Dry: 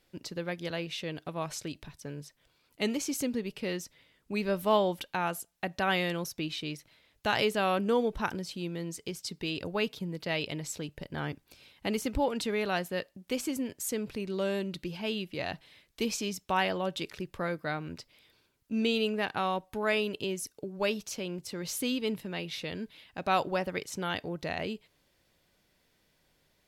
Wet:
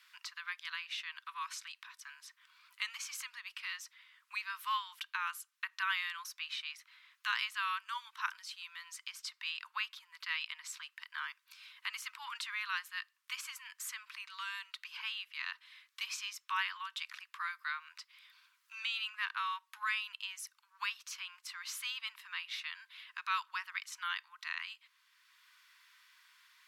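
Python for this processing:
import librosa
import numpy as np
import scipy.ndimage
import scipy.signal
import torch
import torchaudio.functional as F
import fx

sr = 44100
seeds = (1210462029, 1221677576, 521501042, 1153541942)

y = scipy.signal.sosfilt(scipy.signal.butter(16, 1000.0, 'highpass', fs=sr, output='sos'), x)
y = fx.high_shelf(y, sr, hz=4100.0, db=-10.0)
y = fx.band_squash(y, sr, depth_pct=40)
y = y * librosa.db_to_amplitude(1.0)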